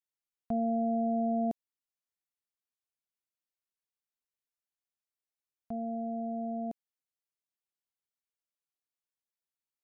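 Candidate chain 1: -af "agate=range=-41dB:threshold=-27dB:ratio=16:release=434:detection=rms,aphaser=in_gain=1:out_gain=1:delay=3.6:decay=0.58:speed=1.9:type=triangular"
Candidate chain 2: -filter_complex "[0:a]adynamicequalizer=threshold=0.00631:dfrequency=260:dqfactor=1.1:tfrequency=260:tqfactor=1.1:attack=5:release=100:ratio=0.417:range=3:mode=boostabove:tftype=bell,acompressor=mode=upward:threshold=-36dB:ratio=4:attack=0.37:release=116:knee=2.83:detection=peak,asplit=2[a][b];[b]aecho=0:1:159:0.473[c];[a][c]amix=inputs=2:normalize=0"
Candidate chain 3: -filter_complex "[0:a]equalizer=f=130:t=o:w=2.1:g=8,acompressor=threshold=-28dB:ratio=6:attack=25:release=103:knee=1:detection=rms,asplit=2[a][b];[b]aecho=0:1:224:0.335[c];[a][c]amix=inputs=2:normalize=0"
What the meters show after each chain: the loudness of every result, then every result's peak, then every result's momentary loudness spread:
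-37.5, -31.0, -32.0 LUFS; -24.0, -20.5, -19.5 dBFS; 10, 23, 14 LU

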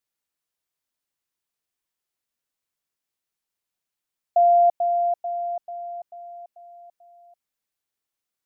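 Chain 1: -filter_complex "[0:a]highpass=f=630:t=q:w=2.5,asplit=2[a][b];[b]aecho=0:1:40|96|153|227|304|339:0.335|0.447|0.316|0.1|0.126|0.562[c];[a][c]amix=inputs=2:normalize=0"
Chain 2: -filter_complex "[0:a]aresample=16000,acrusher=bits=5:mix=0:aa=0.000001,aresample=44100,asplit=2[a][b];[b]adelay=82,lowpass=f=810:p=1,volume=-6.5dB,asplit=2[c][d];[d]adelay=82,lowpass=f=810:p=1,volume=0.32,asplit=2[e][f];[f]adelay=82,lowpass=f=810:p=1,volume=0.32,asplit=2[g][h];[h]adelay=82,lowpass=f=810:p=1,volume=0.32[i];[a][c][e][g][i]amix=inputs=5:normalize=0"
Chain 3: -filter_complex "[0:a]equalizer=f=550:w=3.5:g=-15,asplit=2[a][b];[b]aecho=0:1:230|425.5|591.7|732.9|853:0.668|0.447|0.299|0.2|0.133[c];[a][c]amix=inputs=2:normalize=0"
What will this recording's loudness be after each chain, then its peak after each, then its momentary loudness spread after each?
-12.5, -19.5, -24.0 LUFS; -2.5, -9.5, -13.5 dBFS; 21, 16, 21 LU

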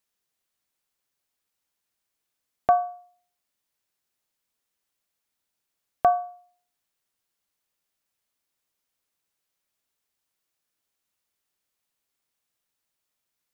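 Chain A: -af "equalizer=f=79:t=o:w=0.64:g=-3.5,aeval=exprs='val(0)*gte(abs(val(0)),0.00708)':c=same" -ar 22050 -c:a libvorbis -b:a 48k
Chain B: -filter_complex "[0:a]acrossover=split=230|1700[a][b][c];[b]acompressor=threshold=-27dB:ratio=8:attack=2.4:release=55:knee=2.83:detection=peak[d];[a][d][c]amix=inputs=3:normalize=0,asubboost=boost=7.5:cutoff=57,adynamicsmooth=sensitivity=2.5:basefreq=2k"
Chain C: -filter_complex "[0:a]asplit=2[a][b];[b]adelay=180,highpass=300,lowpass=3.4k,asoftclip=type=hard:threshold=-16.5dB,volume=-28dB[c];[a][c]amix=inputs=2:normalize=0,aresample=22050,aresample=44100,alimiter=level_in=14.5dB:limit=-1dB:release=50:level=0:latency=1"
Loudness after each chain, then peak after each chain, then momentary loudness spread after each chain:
-25.0, -34.5, -15.0 LUFS; -8.0, -15.5, -1.0 dBFS; 13, 10, 14 LU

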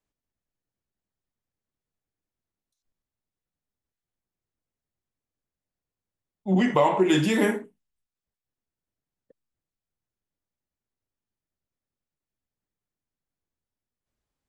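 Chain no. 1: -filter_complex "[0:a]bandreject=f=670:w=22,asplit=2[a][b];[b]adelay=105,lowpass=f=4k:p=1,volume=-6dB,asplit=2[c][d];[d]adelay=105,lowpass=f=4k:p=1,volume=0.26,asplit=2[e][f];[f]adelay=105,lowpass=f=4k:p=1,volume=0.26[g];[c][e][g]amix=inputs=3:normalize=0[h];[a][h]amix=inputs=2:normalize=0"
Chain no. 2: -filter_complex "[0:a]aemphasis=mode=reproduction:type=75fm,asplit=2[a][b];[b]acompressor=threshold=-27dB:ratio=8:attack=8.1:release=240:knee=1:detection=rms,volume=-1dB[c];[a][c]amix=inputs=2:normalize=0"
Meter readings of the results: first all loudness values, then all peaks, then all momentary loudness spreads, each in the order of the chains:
-22.0, -20.0 LUFS; -6.0, -4.5 dBFS; 15, 10 LU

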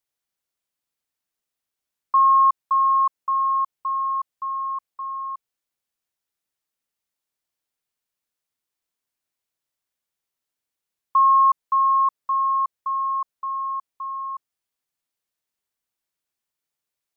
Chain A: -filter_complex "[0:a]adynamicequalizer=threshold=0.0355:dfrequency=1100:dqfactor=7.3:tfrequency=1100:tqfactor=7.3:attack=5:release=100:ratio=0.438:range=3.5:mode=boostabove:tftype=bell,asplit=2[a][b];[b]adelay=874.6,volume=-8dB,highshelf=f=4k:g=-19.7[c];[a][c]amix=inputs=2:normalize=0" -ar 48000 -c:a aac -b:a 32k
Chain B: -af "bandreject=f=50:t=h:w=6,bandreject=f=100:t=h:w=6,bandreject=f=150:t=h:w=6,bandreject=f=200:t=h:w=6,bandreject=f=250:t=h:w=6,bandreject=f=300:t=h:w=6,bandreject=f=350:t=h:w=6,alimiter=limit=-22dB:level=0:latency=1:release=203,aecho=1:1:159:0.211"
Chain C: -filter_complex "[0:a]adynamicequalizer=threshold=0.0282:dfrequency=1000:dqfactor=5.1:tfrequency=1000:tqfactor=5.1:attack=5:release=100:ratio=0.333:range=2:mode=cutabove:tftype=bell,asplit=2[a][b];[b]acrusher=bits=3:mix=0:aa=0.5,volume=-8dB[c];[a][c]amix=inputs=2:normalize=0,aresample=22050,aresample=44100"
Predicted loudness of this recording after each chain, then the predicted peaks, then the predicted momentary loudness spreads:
-14.5, -28.0, -18.5 LUFS; -3.5, -22.0, -8.5 dBFS; 19, 7, 17 LU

